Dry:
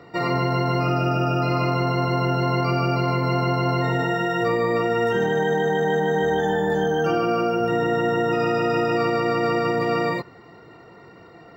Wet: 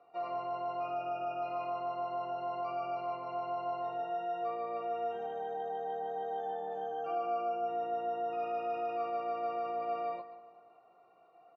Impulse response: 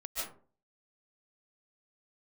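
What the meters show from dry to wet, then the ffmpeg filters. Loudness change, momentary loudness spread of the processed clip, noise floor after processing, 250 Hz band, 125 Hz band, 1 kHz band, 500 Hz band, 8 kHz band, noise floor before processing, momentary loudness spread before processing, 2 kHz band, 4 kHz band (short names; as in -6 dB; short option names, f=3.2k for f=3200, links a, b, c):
-15.0 dB, 3 LU, -62 dBFS, -26.0 dB, -36.0 dB, -9.5 dB, -14.5 dB, n/a, -47 dBFS, 1 LU, -25.0 dB, under -20 dB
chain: -filter_complex "[0:a]asplit=3[a][b][c];[a]bandpass=f=730:t=q:w=8,volume=0dB[d];[b]bandpass=f=1.09k:t=q:w=8,volume=-6dB[e];[c]bandpass=f=2.44k:t=q:w=8,volume=-9dB[f];[d][e][f]amix=inputs=3:normalize=0,asplit=2[g][h];[h]adelay=17,volume=-13dB[i];[g][i]amix=inputs=2:normalize=0,asplit=2[j][k];[k]adelay=189,lowpass=f=3.4k:p=1,volume=-16.5dB,asplit=2[l][m];[m]adelay=189,lowpass=f=3.4k:p=1,volume=0.52,asplit=2[n][o];[o]adelay=189,lowpass=f=3.4k:p=1,volume=0.52,asplit=2[p][q];[q]adelay=189,lowpass=f=3.4k:p=1,volume=0.52,asplit=2[r][s];[s]adelay=189,lowpass=f=3.4k:p=1,volume=0.52[t];[j][l][n][p][r][t]amix=inputs=6:normalize=0,asplit=2[u][v];[1:a]atrim=start_sample=2205,atrim=end_sample=6174[w];[v][w]afir=irnorm=-1:irlink=0,volume=-8.5dB[x];[u][x]amix=inputs=2:normalize=0,volume=-8.5dB"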